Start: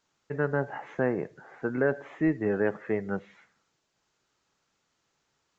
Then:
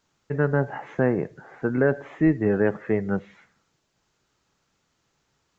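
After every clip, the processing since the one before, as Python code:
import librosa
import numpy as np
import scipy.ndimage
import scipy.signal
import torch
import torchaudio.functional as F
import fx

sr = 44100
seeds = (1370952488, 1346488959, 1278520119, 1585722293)

y = fx.low_shelf(x, sr, hz=220.0, db=8.0)
y = y * librosa.db_to_amplitude(3.0)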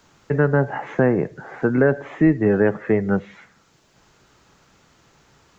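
y = fx.band_squash(x, sr, depth_pct=40)
y = y * librosa.db_to_amplitude(4.5)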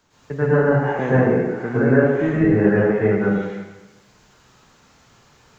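y = fx.rev_plate(x, sr, seeds[0], rt60_s=1.1, hf_ratio=1.0, predelay_ms=95, drr_db=-10.0)
y = y * librosa.db_to_amplitude(-7.5)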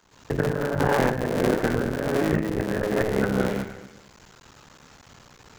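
y = fx.cycle_switch(x, sr, every=3, mode='muted')
y = fx.over_compress(y, sr, threshold_db=-24.0, ratio=-1.0)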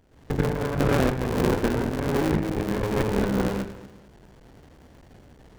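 y = fx.running_max(x, sr, window=33)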